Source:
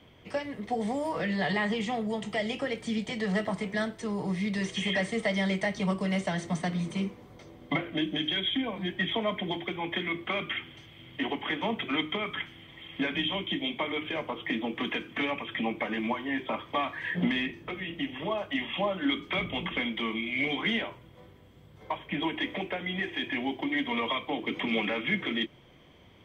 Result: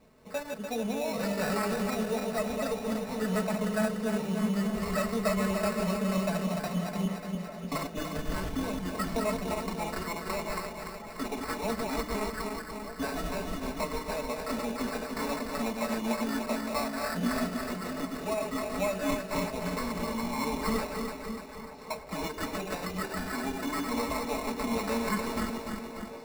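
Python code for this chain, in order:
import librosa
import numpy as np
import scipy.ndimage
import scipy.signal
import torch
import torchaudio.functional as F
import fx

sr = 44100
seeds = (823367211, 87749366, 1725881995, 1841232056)

y = fx.reverse_delay_fb(x, sr, ms=147, feedback_pct=75, wet_db=-4.5)
y = fx.sample_hold(y, sr, seeds[0], rate_hz=3200.0, jitter_pct=0)
y = fx.peak_eq(y, sr, hz=550.0, db=8.0, octaves=0.29)
y = y + 0.65 * np.pad(y, (int(4.6 * sr / 1000.0), 0))[:len(y)]
y = fx.echo_stepped(y, sr, ms=607, hz=250.0, octaves=1.4, feedback_pct=70, wet_db=-8.5)
y = y * 10.0 ** (-6.0 / 20.0)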